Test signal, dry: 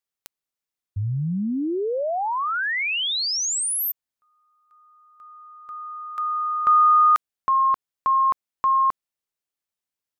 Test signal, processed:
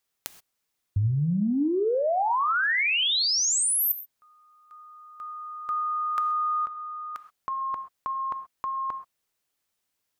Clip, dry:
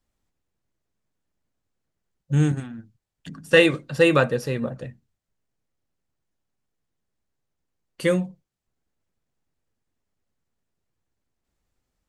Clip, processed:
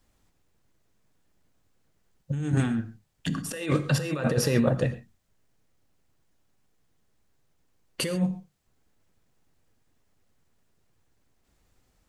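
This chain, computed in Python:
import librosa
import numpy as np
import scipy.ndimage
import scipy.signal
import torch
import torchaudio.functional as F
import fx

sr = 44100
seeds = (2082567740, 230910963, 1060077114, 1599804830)

y = fx.over_compress(x, sr, threshold_db=-29.0, ratio=-1.0)
y = fx.rev_gated(y, sr, seeds[0], gate_ms=150, shape='flat', drr_db=11.5)
y = y * librosa.db_to_amplitude(2.5)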